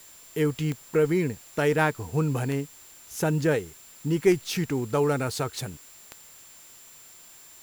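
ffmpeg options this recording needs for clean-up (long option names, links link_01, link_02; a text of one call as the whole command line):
ffmpeg -i in.wav -af "adeclick=threshold=4,bandreject=frequency=7300:width=30,afwtdn=0.0025" out.wav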